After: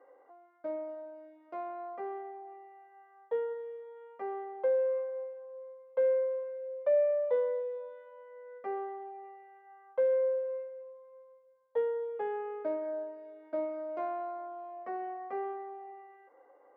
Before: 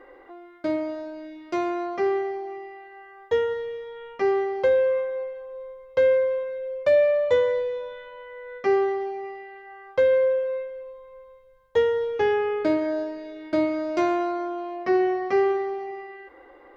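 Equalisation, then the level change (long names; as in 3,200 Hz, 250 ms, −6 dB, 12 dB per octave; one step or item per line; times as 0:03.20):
four-pole ladder band-pass 560 Hz, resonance 25%
parametric band 360 Hz −15 dB 0.43 octaves
+3.5 dB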